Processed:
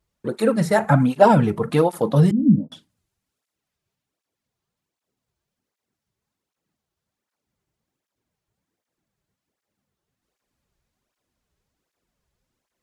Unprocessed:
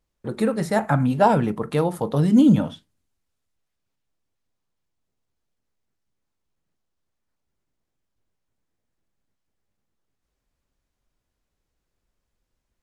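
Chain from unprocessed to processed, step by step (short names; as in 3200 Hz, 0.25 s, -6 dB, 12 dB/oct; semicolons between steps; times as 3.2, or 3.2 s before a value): 2.31–2.72 ladder low-pass 350 Hz, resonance 20%; tape flanging out of phase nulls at 1.3 Hz, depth 4.3 ms; gain +6 dB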